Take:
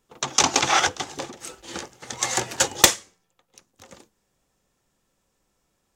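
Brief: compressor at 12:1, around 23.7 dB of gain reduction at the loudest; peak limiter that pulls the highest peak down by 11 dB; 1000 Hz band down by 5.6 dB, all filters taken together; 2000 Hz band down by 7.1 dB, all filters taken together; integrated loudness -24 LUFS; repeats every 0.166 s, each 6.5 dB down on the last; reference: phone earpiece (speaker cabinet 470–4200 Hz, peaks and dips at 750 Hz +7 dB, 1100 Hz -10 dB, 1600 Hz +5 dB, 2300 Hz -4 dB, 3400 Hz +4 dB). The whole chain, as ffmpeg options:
-af "equalizer=f=1k:t=o:g=-9,equalizer=f=2k:t=o:g=-7,acompressor=threshold=-36dB:ratio=12,alimiter=level_in=3.5dB:limit=-24dB:level=0:latency=1,volume=-3.5dB,highpass=470,equalizer=f=750:t=q:w=4:g=7,equalizer=f=1.1k:t=q:w=4:g=-10,equalizer=f=1.6k:t=q:w=4:g=5,equalizer=f=2.3k:t=q:w=4:g=-4,equalizer=f=3.4k:t=q:w=4:g=4,lowpass=f=4.2k:w=0.5412,lowpass=f=4.2k:w=1.3066,aecho=1:1:166|332|498|664|830|996:0.473|0.222|0.105|0.0491|0.0231|0.0109,volume=21.5dB"

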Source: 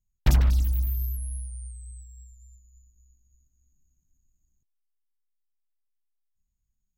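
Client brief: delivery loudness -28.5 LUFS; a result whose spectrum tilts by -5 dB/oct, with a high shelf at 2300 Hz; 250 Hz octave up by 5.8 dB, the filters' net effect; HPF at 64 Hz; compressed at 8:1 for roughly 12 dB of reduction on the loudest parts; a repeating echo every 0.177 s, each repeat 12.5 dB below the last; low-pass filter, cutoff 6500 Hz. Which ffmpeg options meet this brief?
-af "highpass=64,lowpass=6.5k,equalizer=f=250:t=o:g=8,highshelf=f=2.3k:g=7,acompressor=threshold=-29dB:ratio=8,aecho=1:1:177|354|531:0.237|0.0569|0.0137,volume=7.5dB"

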